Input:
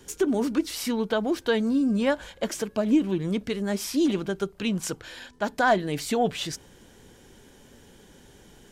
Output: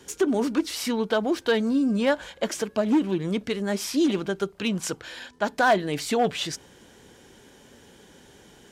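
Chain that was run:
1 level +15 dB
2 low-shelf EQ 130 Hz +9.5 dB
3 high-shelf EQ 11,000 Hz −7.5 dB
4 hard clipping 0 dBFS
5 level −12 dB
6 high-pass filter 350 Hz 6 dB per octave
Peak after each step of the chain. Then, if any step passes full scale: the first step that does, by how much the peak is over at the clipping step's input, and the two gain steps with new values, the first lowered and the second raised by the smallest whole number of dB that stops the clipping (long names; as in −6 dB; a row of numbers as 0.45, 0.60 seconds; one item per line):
+5.0, +5.0, +5.0, 0.0, −12.0, −9.5 dBFS
step 1, 5.0 dB
step 1 +10 dB, step 5 −7 dB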